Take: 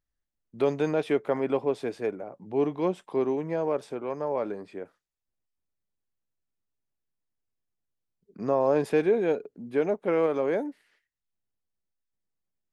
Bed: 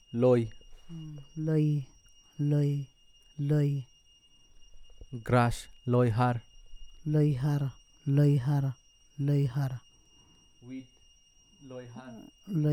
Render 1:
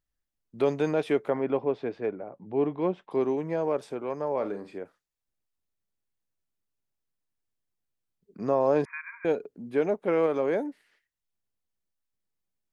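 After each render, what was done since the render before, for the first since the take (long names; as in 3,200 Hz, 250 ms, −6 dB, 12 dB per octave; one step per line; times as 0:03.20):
0:01.30–0:03.11: high-frequency loss of the air 240 metres
0:04.35–0:04.78: flutter between parallel walls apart 7.7 metres, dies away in 0.26 s
0:08.85–0:09.25: linear-phase brick-wall band-pass 930–2,500 Hz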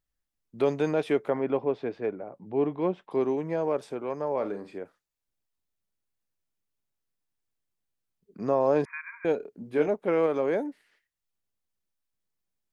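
0:09.37–0:09.88: double-tracking delay 27 ms −6.5 dB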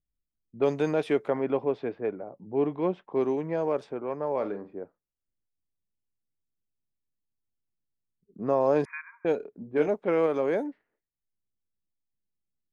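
low-pass that shuts in the quiet parts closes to 340 Hz, open at −22.5 dBFS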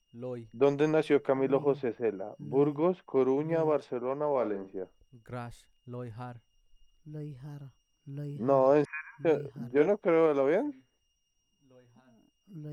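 mix in bed −15.5 dB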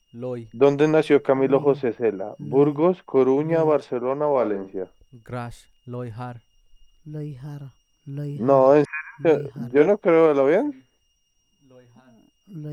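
level +8.5 dB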